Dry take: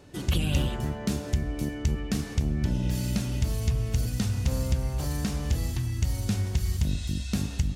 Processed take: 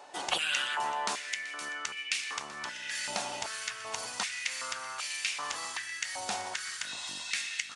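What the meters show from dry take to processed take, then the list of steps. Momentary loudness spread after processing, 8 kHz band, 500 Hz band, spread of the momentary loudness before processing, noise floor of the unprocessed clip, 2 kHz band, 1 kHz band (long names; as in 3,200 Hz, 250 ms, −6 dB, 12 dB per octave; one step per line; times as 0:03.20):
6 LU, +3.0 dB, −6.5 dB, 3 LU, −37 dBFS, +9.0 dB, +8.0 dB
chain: single-tap delay 382 ms −17 dB
downsampling to 22,050 Hz
high-pass on a step sequencer 2.6 Hz 800–2,400 Hz
level +3 dB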